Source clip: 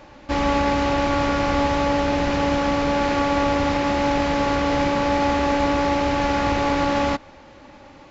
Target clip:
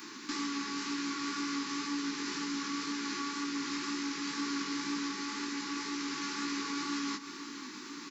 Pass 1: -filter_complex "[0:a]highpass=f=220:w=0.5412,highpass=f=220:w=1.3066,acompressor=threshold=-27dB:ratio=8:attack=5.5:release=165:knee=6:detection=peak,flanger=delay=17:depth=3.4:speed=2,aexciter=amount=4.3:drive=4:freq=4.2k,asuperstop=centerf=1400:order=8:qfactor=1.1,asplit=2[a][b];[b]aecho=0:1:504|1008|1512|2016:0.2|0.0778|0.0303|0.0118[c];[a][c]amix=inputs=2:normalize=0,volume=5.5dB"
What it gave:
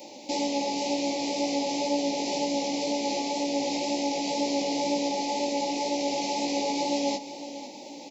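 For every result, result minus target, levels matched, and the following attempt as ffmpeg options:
500 Hz band +13.0 dB; compressor: peak gain reduction -6 dB
-filter_complex "[0:a]highpass=f=220:w=0.5412,highpass=f=220:w=1.3066,acompressor=threshold=-27dB:ratio=8:attack=5.5:release=165:knee=6:detection=peak,flanger=delay=17:depth=3.4:speed=2,aexciter=amount=4.3:drive=4:freq=4.2k,asuperstop=centerf=640:order=8:qfactor=1.1,asplit=2[a][b];[b]aecho=0:1:504|1008|1512|2016:0.2|0.0778|0.0303|0.0118[c];[a][c]amix=inputs=2:normalize=0,volume=5.5dB"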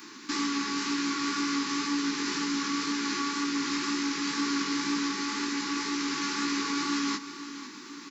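compressor: peak gain reduction -6 dB
-filter_complex "[0:a]highpass=f=220:w=0.5412,highpass=f=220:w=1.3066,acompressor=threshold=-34dB:ratio=8:attack=5.5:release=165:knee=6:detection=peak,flanger=delay=17:depth=3.4:speed=2,aexciter=amount=4.3:drive=4:freq=4.2k,asuperstop=centerf=640:order=8:qfactor=1.1,asplit=2[a][b];[b]aecho=0:1:504|1008|1512|2016:0.2|0.0778|0.0303|0.0118[c];[a][c]amix=inputs=2:normalize=0,volume=5.5dB"

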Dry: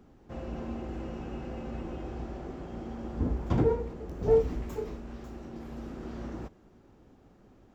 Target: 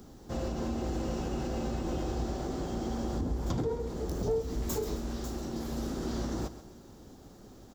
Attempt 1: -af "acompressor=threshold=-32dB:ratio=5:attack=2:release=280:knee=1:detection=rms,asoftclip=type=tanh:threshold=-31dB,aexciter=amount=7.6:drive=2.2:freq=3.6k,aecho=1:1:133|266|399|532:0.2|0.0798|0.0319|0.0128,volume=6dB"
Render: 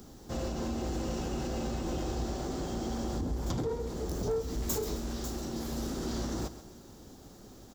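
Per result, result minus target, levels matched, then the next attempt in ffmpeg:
soft clip: distortion +12 dB; 8000 Hz band +4.5 dB
-af "acompressor=threshold=-32dB:ratio=5:attack=2:release=280:knee=1:detection=rms,asoftclip=type=tanh:threshold=-24dB,aexciter=amount=7.6:drive=2.2:freq=3.6k,aecho=1:1:133|266|399|532:0.2|0.0798|0.0319|0.0128,volume=6dB"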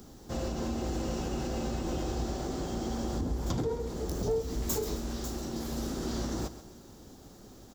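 8000 Hz band +4.0 dB
-af "acompressor=threshold=-32dB:ratio=5:attack=2:release=280:knee=1:detection=rms,highshelf=f=3.1k:g=-5.5,asoftclip=type=tanh:threshold=-24dB,aexciter=amount=7.6:drive=2.2:freq=3.6k,aecho=1:1:133|266|399|532:0.2|0.0798|0.0319|0.0128,volume=6dB"

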